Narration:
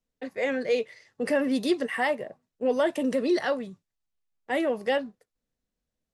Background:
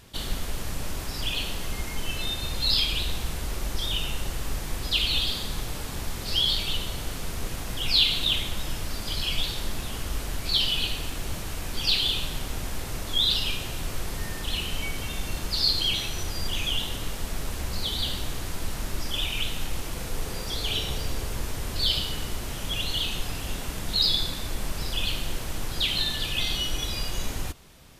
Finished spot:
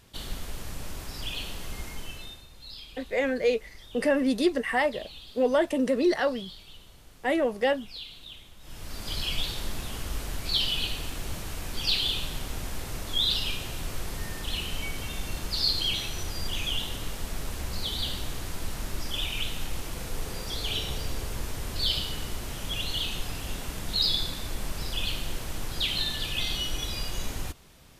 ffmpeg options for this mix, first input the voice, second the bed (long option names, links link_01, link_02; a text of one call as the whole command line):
ffmpeg -i stem1.wav -i stem2.wav -filter_complex "[0:a]adelay=2750,volume=1dB[link_01];[1:a]volume=12.5dB,afade=type=out:start_time=1.86:duration=0.6:silence=0.177828,afade=type=in:start_time=8.6:duration=0.54:silence=0.125893[link_02];[link_01][link_02]amix=inputs=2:normalize=0" out.wav